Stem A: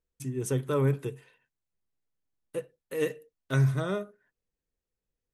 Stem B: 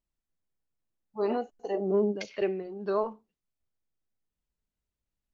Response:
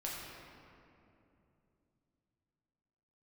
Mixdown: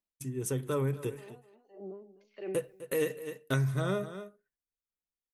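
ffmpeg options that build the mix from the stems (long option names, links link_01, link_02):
-filter_complex "[0:a]dynaudnorm=framelen=280:gausssize=9:maxgain=9dB,agate=range=-17dB:threshold=-48dB:ratio=16:detection=peak,highshelf=frequency=10000:gain=9,volume=-3.5dB,asplit=3[link_01][link_02][link_03];[link_02]volume=-17dB[link_04];[1:a]highpass=frequency=180:width=0.5412,highpass=frequency=180:width=1.3066,alimiter=level_in=2.5dB:limit=-24dB:level=0:latency=1:release=30,volume=-2.5dB,aeval=exprs='val(0)*pow(10,-27*(0.5-0.5*cos(2*PI*1.6*n/s))/20)':channel_layout=same,volume=-3dB,asplit=2[link_05][link_06];[link_06]volume=-24dB[link_07];[link_03]apad=whole_len=235275[link_08];[link_05][link_08]sidechaincompress=threshold=-38dB:ratio=8:attack=5.8:release=1300[link_09];[link_04][link_07]amix=inputs=2:normalize=0,aecho=0:1:254:1[link_10];[link_01][link_09][link_10]amix=inputs=3:normalize=0,acompressor=threshold=-27dB:ratio=5"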